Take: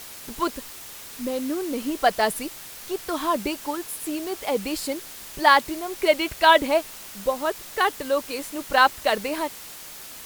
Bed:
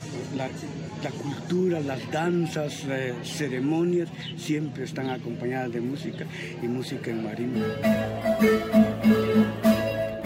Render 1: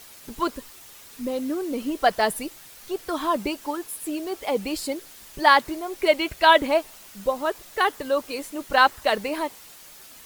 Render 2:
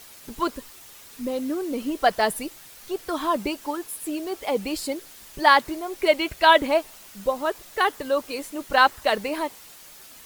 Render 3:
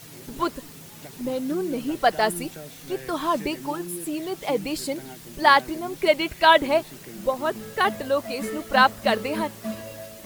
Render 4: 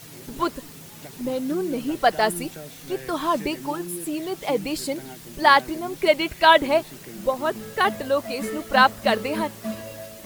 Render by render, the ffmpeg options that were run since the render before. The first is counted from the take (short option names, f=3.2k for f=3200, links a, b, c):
-af "afftdn=nr=7:nf=-41"
-af anull
-filter_complex "[1:a]volume=-12dB[a];[0:a][a]amix=inputs=2:normalize=0"
-af "volume=1dB,alimiter=limit=-3dB:level=0:latency=1"